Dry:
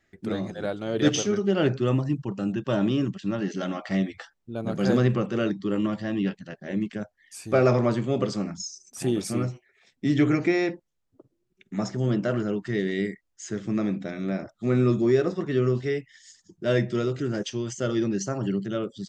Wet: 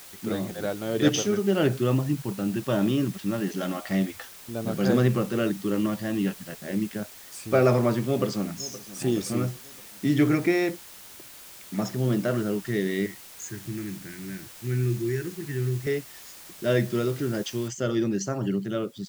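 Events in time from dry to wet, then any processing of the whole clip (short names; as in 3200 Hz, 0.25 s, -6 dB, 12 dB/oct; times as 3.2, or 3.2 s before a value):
8.03–9 echo throw 0.52 s, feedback 50%, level -17 dB
13.06–15.87 EQ curve 140 Hz 0 dB, 240 Hz -14 dB, 340 Hz -4 dB, 540 Hz -25 dB, 1100 Hz -27 dB, 1600 Hz 0 dB, 2800 Hz -7 dB, 4000 Hz -24 dB, 6400 Hz +2 dB
17.68 noise floor step -46 dB -60 dB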